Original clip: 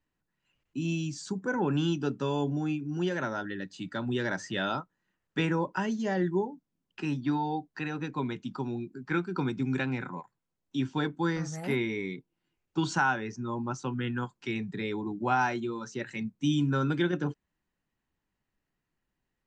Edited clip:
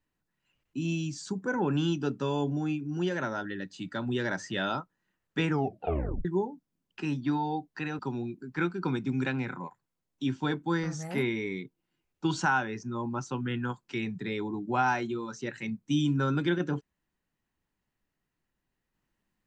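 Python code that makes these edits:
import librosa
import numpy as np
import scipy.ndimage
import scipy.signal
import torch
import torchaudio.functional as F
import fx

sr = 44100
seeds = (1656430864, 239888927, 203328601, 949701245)

y = fx.edit(x, sr, fx.tape_stop(start_s=5.48, length_s=0.77),
    fx.cut(start_s=7.99, length_s=0.53), tone=tone)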